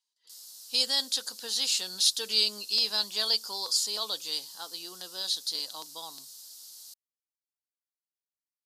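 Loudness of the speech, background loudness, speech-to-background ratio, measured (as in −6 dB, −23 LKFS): −27.5 LKFS, −45.0 LKFS, 17.5 dB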